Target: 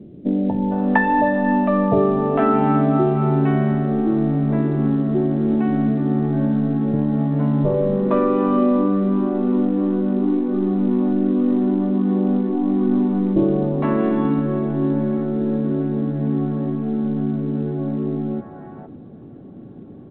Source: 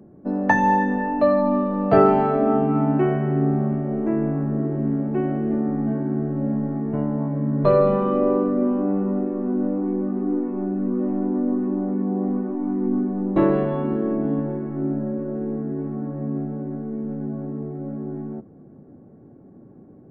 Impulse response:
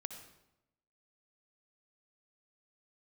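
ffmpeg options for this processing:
-filter_complex "[0:a]acompressor=threshold=0.0562:ratio=2,acrossover=split=580[s0][s1];[s1]adelay=460[s2];[s0][s2]amix=inputs=2:normalize=0,asplit=2[s3][s4];[1:a]atrim=start_sample=2205[s5];[s4][s5]afir=irnorm=-1:irlink=0,volume=0.398[s6];[s3][s6]amix=inputs=2:normalize=0,volume=2" -ar 8000 -c:a pcm_alaw

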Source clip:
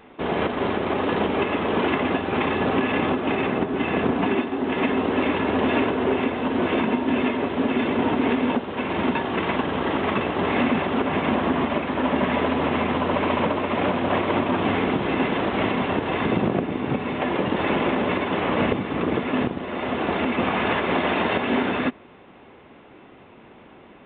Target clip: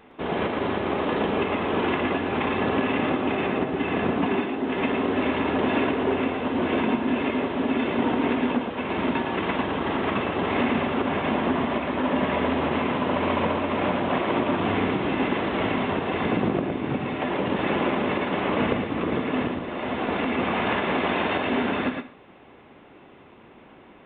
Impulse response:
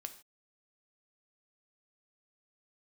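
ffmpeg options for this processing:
-filter_complex "[0:a]asplit=2[s0][s1];[1:a]atrim=start_sample=2205,adelay=113[s2];[s1][s2]afir=irnorm=-1:irlink=0,volume=0.841[s3];[s0][s3]amix=inputs=2:normalize=0,volume=0.708"

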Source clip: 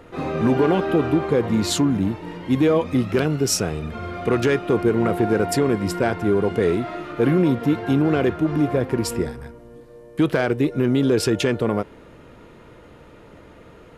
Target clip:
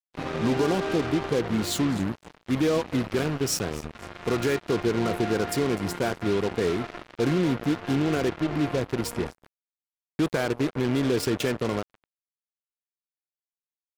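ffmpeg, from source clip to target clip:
-af "aecho=1:1:251|502|753:0.106|0.0455|0.0196,acrusher=bits=3:mix=0:aa=0.5,volume=0.501"

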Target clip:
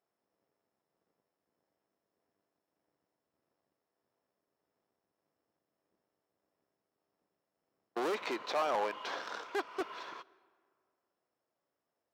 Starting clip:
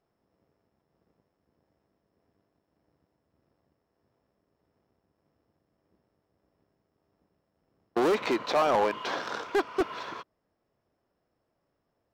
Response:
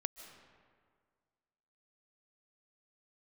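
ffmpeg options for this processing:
-filter_complex "[0:a]highpass=f=500:p=1,asplit=2[s0][s1];[1:a]atrim=start_sample=2205[s2];[s1][s2]afir=irnorm=-1:irlink=0,volume=0.282[s3];[s0][s3]amix=inputs=2:normalize=0,volume=0.398"

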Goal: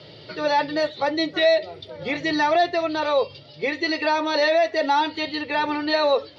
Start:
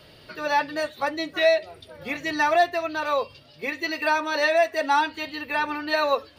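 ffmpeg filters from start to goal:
-filter_complex "[0:a]asplit=2[s0][s1];[s1]alimiter=limit=0.0944:level=0:latency=1:release=17,volume=1.41[s2];[s0][s2]amix=inputs=2:normalize=0,highpass=f=100:w=0.5412,highpass=f=100:w=1.3066,equalizer=f=240:t=q:w=4:g=-9,equalizer=f=700:t=q:w=4:g=-4,equalizer=f=1100:t=q:w=4:g=-9,equalizer=f=1600:t=q:w=4:g=-10,equalizer=f=2600:t=q:w=4:g=-8,lowpass=f=4800:w=0.5412,lowpass=f=4800:w=1.3066,volume=1.19"

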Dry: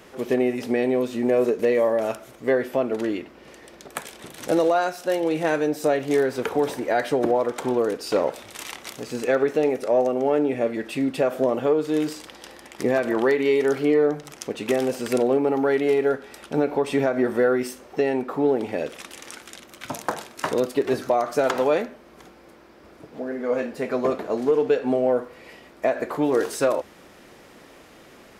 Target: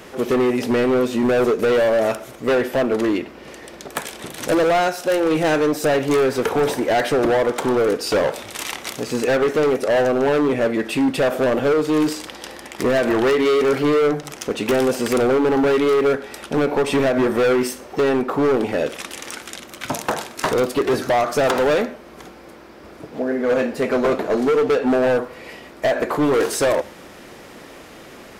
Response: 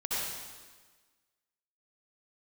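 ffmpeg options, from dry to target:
-filter_complex "[0:a]volume=12.6,asoftclip=hard,volume=0.0794,asplit=2[s0][s1];[1:a]atrim=start_sample=2205,afade=t=out:st=0.18:d=0.01,atrim=end_sample=8379[s2];[s1][s2]afir=irnorm=-1:irlink=0,volume=0.0531[s3];[s0][s3]amix=inputs=2:normalize=0,volume=2.37"

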